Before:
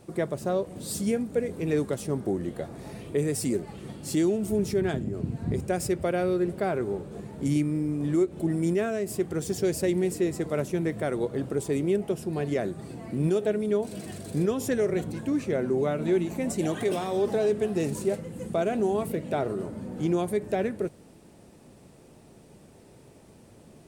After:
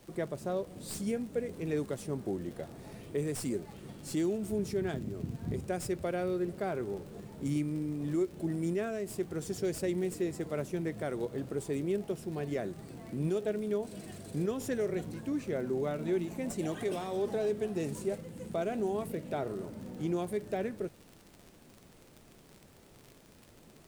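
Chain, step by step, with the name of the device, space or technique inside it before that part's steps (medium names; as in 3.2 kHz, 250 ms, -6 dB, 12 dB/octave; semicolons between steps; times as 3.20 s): record under a worn stylus (tracing distortion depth 0.028 ms; crackle 63 per s -35 dBFS; pink noise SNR 28 dB); trim -7 dB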